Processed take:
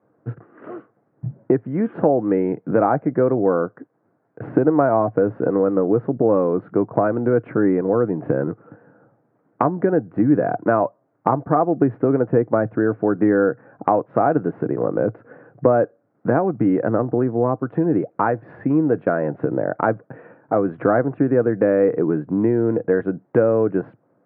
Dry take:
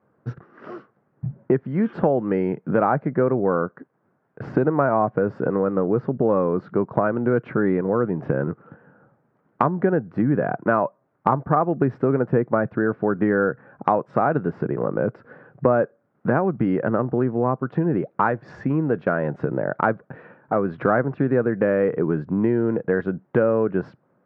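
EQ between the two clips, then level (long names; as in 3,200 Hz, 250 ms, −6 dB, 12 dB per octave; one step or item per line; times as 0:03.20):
loudspeaker in its box 100–2,600 Hz, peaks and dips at 110 Hz +8 dB, 300 Hz +9 dB, 480 Hz +5 dB, 720 Hz +8 dB
notch filter 750 Hz, Q 19
−2.0 dB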